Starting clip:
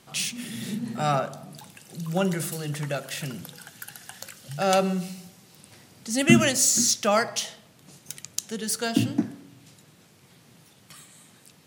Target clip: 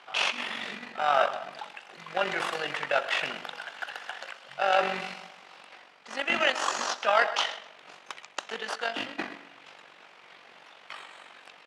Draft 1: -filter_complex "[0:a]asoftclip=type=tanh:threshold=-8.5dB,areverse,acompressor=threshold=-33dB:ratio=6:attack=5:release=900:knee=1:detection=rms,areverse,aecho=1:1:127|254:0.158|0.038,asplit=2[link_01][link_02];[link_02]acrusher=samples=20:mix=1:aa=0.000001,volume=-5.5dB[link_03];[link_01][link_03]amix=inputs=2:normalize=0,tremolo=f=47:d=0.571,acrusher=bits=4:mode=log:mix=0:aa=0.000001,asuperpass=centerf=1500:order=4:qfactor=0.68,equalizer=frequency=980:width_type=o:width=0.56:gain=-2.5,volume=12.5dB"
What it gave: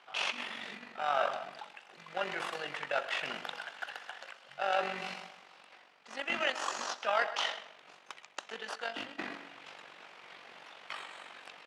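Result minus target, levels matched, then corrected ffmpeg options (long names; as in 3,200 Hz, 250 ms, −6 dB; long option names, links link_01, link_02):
downward compressor: peak gain reduction +7 dB
-filter_complex "[0:a]asoftclip=type=tanh:threshold=-8.5dB,areverse,acompressor=threshold=-24.5dB:ratio=6:attack=5:release=900:knee=1:detection=rms,areverse,aecho=1:1:127|254:0.158|0.038,asplit=2[link_01][link_02];[link_02]acrusher=samples=20:mix=1:aa=0.000001,volume=-5.5dB[link_03];[link_01][link_03]amix=inputs=2:normalize=0,tremolo=f=47:d=0.571,acrusher=bits=4:mode=log:mix=0:aa=0.000001,asuperpass=centerf=1500:order=4:qfactor=0.68,equalizer=frequency=980:width_type=o:width=0.56:gain=-2.5,volume=12.5dB"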